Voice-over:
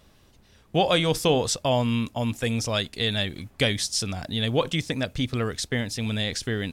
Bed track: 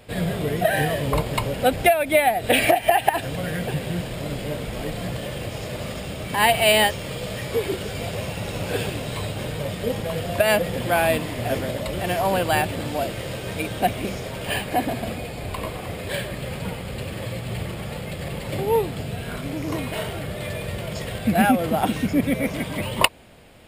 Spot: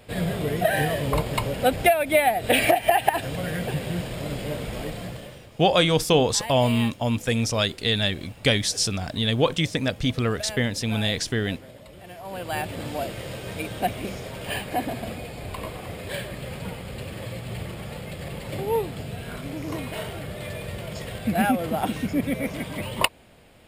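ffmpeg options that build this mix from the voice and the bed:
-filter_complex "[0:a]adelay=4850,volume=2.5dB[a];[1:a]volume=12.5dB,afade=t=out:st=4.74:d=0.72:silence=0.149624,afade=t=in:st=12.22:d=0.62:silence=0.199526[b];[a][b]amix=inputs=2:normalize=0"

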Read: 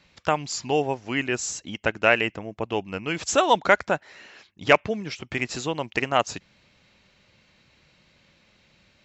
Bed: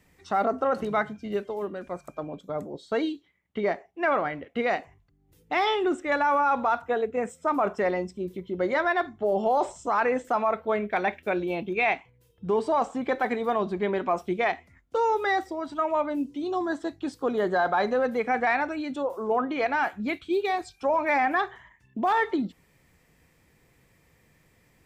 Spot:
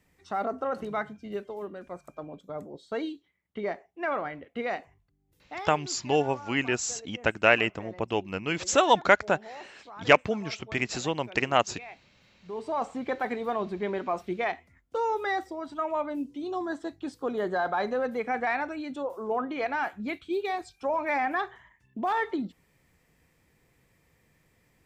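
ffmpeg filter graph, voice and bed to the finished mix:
-filter_complex "[0:a]adelay=5400,volume=-1.5dB[a];[1:a]volume=11dB,afade=t=out:st=5.03:d=0.79:silence=0.177828,afade=t=in:st=12.42:d=0.43:silence=0.149624[b];[a][b]amix=inputs=2:normalize=0"

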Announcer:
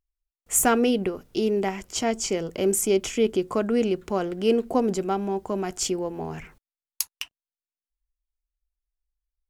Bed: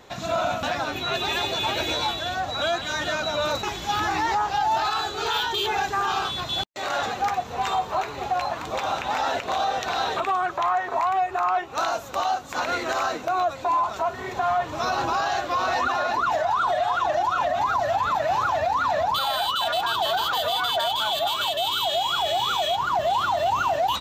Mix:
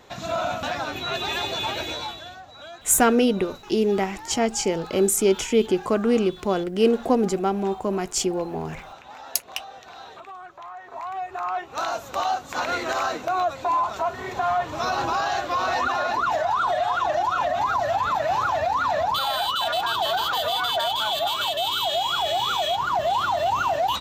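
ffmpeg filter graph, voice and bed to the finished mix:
-filter_complex "[0:a]adelay=2350,volume=2.5dB[a];[1:a]volume=15dB,afade=t=out:st=1.61:d=0.82:silence=0.177828,afade=t=in:st=10.76:d=1.46:silence=0.149624[b];[a][b]amix=inputs=2:normalize=0"

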